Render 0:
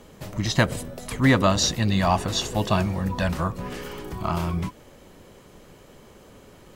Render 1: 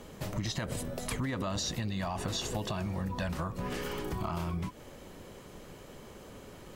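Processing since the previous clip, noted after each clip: limiter -16.5 dBFS, peak gain reduction 11 dB; compressor, threshold -31 dBFS, peak gain reduction 10 dB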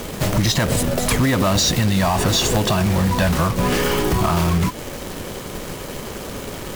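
companded quantiser 4-bit; sine folder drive 7 dB, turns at -18 dBFS; gain +7 dB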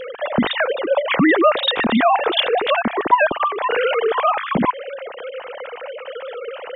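sine-wave speech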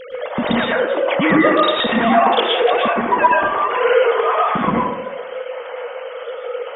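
plate-style reverb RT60 0.81 s, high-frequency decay 0.45×, pre-delay 0.1 s, DRR -5 dB; gain -4.5 dB

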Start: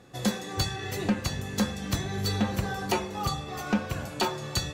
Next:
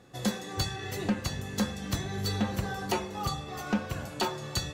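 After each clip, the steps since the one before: notch 2400 Hz, Q 30; gain -2.5 dB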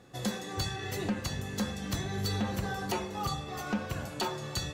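limiter -22 dBFS, peak gain reduction 4.5 dB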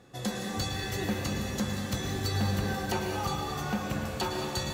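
plate-style reverb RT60 2.6 s, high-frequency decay 0.95×, pre-delay 95 ms, DRR 1 dB

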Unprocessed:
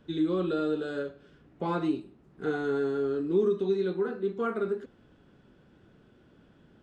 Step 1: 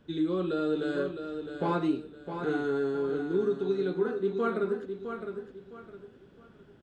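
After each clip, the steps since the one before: vocal rider 0.5 s; on a send: feedback echo 0.66 s, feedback 31%, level -8 dB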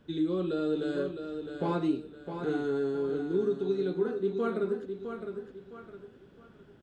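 dynamic EQ 1400 Hz, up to -5 dB, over -45 dBFS, Q 0.74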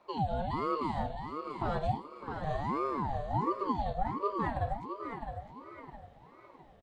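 feedback echo 0.606 s, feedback 34%, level -14 dB; ring modulator with a swept carrier 560 Hz, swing 45%, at 1.4 Hz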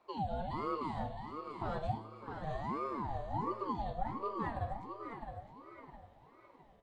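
flange 0.32 Hz, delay 2.5 ms, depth 8.6 ms, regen -66%; resonator 110 Hz, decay 1.6 s, mix 60%; gain +6.5 dB

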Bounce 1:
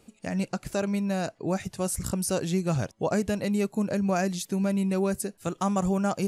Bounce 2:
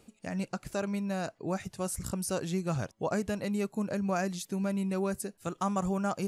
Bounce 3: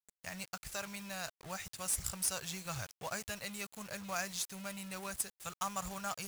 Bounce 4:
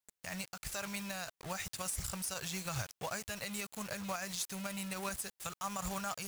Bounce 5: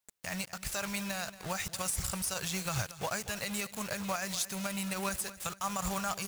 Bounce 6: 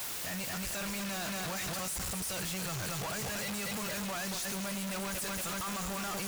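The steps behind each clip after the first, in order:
dynamic EQ 1200 Hz, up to +4 dB, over -42 dBFS, Q 1.4; reverse; upward compressor, threshold -34 dBFS; reverse; gain -5.5 dB
passive tone stack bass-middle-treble 10-0-10; companded quantiser 4-bit; gain +3.5 dB
limiter -32.5 dBFS, peak gain reduction 11.5 dB; gain +4.5 dB
feedback echo 0.23 s, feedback 41%, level -16 dB; gain +4.5 dB
infinite clipping

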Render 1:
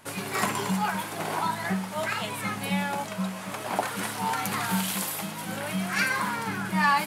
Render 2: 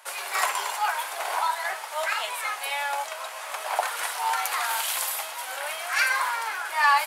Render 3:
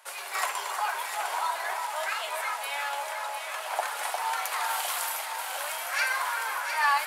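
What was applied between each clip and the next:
inverse Chebyshev high-pass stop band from 180 Hz, stop band 60 dB; gain +3 dB
echo with dull and thin repeats by turns 0.353 s, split 1600 Hz, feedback 78%, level -4 dB; gain -4.5 dB

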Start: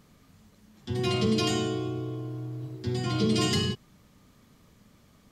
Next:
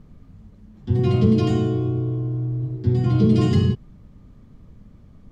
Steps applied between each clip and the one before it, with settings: tilt -4 dB/oct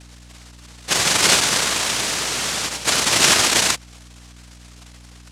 noise vocoder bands 1; hum 60 Hz, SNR 23 dB; gain +1 dB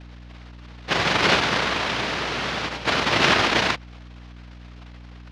air absorption 290 m; gain +2.5 dB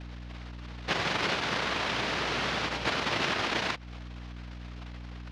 compressor 6:1, threshold -27 dBFS, peak gain reduction 12.5 dB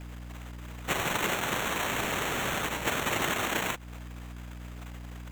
sample-and-hold 9×

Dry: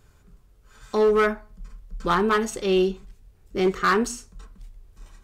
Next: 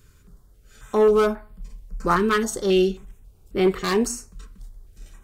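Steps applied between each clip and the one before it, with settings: high shelf 7000 Hz +5 dB; stepped notch 3.7 Hz 750–6200 Hz; gain +2.5 dB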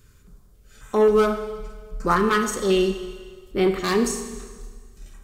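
Schroeder reverb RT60 1.6 s, combs from 30 ms, DRR 7.5 dB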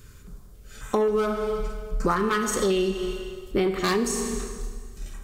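compressor 12:1, threshold -26 dBFS, peak gain reduction 13 dB; gain +6 dB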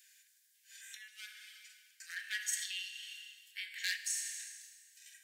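Chebyshev high-pass 1600 Hz, order 8; gain -5.5 dB

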